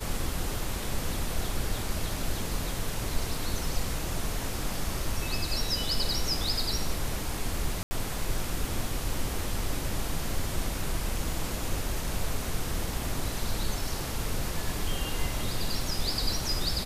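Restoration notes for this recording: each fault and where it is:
7.83–7.91 gap 80 ms

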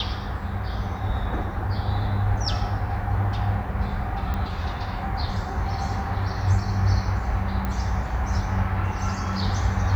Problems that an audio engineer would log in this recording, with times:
4.34 pop -17 dBFS
7.65 pop -15 dBFS

